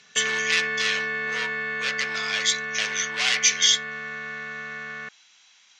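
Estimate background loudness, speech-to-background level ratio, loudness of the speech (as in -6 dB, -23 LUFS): -28.5 LUFS, 5.0 dB, -23.5 LUFS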